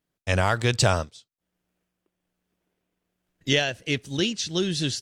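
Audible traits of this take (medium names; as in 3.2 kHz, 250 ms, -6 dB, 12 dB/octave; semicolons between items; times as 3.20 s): tremolo triangle 1.3 Hz, depth 40%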